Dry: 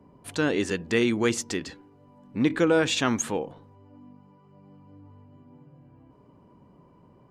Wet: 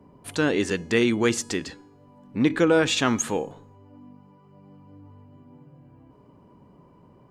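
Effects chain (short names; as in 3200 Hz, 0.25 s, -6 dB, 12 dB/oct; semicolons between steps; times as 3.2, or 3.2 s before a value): resonator 420 Hz, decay 0.7 s, mix 50%; gain +8 dB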